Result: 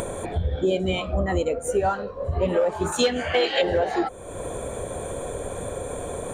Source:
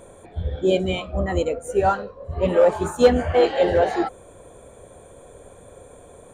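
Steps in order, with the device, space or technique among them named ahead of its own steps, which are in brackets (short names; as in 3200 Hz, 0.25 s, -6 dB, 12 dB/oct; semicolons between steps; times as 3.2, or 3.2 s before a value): upward and downward compression (upward compressor, threshold -21 dBFS; compressor 5:1, threshold -21 dBFS, peak gain reduction 11.5 dB); 2.92–3.62 weighting filter D; gain +2 dB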